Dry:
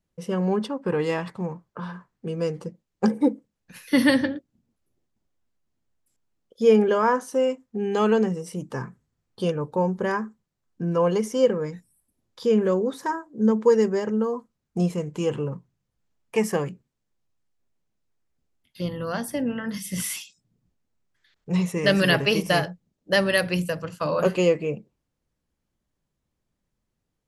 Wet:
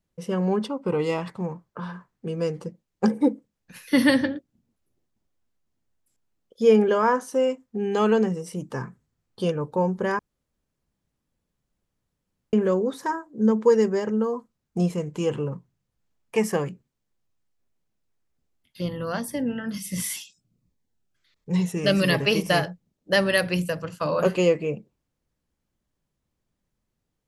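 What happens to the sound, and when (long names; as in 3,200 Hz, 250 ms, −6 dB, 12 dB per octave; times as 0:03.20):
0:00.68–0:01.22: Butterworth band-reject 1,700 Hz, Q 4.1
0:10.19–0:12.53: fill with room tone
0:19.19–0:22.22: phaser whose notches keep moving one way falling 1.4 Hz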